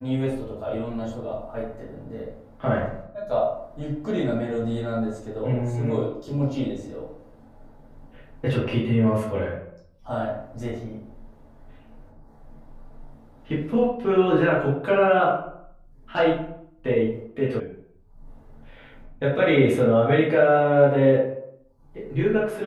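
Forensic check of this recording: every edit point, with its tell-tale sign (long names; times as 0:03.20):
0:17.60: cut off before it has died away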